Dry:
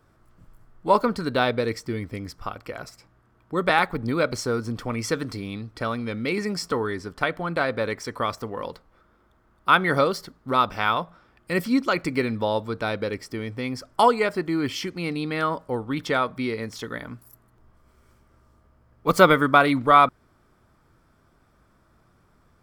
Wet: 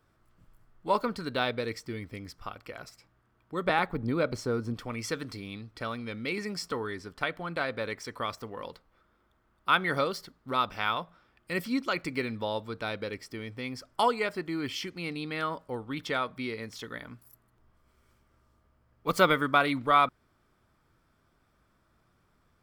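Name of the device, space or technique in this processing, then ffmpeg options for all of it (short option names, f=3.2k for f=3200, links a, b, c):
presence and air boost: -filter_complex "[0:a]asettb=1/sr,asplit=3[a][b][c];[a]atrim=end=3.664[d];[b]atrim=start=3.66:end=4.74,asetpts=PTS-STARTPTS,afade=t=in:d=0.004:c=qsin,afade=t=out:st=1.076:d=0.004:c=qsin,tiltshelf=f=1.2k:g=5[e];[c]atrim=start=4.736[f];[d][e]acrossfade=d=0.004:c1=hsin:c2=qsin[g];[g][f]acrossfade=d=0.004:c1=qsin:c2=hsin,equalizer=f=3k:t=o:w=1.6:g=5,highshelf=f=12k:g=5,volume=-8.5dB"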